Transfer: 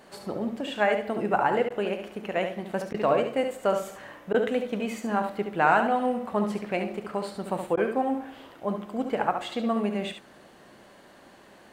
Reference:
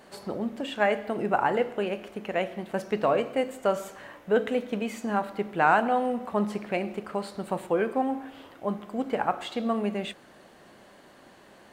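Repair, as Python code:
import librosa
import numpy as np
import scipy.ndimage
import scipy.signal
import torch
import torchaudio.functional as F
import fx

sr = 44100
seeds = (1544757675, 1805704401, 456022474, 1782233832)

y = fx.fix_interpolate(x, sr, at_s=(1.69, 2.93, 4.33, 7.76), length_ms=11.0)
y = fx.fix_echo_inverse(y, sr, delay_ms=71, level_db=-7.5)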